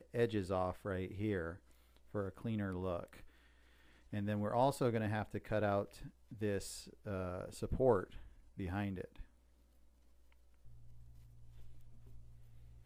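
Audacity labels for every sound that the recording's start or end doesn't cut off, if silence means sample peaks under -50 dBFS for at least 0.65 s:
4.130000	9.220000	sound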